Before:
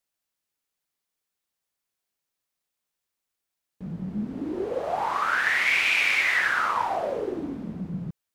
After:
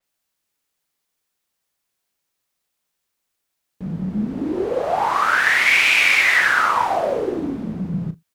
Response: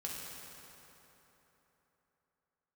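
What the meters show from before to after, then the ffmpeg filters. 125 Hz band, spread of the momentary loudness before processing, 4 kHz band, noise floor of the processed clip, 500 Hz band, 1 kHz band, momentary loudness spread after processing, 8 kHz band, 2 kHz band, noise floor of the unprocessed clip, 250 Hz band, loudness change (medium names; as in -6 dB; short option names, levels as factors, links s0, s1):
+7.5 dB, 15 LU, +8.0 dB, -77 dBFS, +7.0 dB, +7.0 dB, 15 LU, +9.5 dB, +7.0 dB, -85 dBFS, +7.5 dB, +7.5 dB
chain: -filter_complex "[0:a]asplit=2[s0][s1];[s1]adelay=37,volume=0.266[s2];[s0][s2]amix=inputs=2:normalize=0,asplit=2[s3][s4];[1:a]atrim=start_sample=2205,atrim=end_sample=3969[s5];[s4][s5]afir=irnorm=-1:irlink=0,volume=0.0891[s6];[s3][s6]amix=inputs=2:normalize=0,adynamicequalizer=threshold=0.0158:dfrequency=5100:dqfactor=0.7:tfrequency=5100:tqfactor=0.7:attack=5:release=100:ratio=0.375:range=1.5:mode=boostabove:tftype=highshelf,volume=2.11"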